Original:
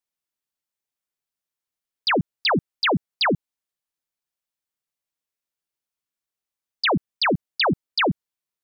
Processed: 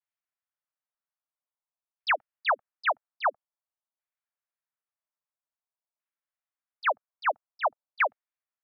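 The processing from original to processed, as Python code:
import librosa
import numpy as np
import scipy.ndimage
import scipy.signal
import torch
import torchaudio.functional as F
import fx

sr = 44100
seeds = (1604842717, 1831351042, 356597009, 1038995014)

y = fx.filter_lfo_lowpass(x, sr, shape='saw_down', hz=0.5, low_hz=860.0, high_hz=2200.0, q=1.3)
y = scipy.signal.sosfilt(scipy.signal.ellip(4, 1.0, 40, 590.0, 'highpass', fs=sr, output='sos'), y)
y = fx.vibrato(y, sr, rate_hz=1.1, depth_cents=82.0)
y = y * 10.0 ** (-4.0 / 20.0)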